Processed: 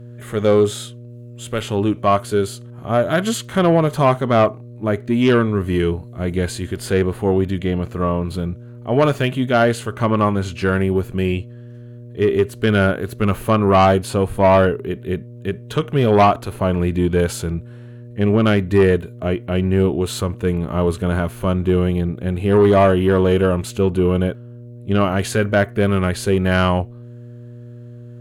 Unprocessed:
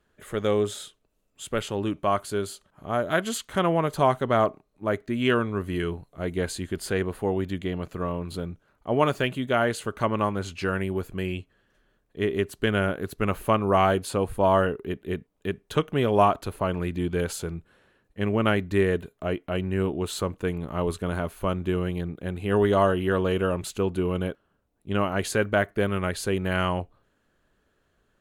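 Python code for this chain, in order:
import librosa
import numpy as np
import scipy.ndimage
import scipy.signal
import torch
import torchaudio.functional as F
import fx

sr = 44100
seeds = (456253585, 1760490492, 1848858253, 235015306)

y = fx.dmg_buzz(x, sr, base_hz=120.0, harmonics=5, level_db=-48.0, tilt_db=-8, odd_only=False)
y = fx.hpss(y, sr, part='harmonic', gain_db=8)
y = fx.cheby_harmonics(y, sr, harmonics=(5,), levels_db=(-15,), full_scale_db=-0.5)
y = y * librosa.db_to_amplitude(-2.0)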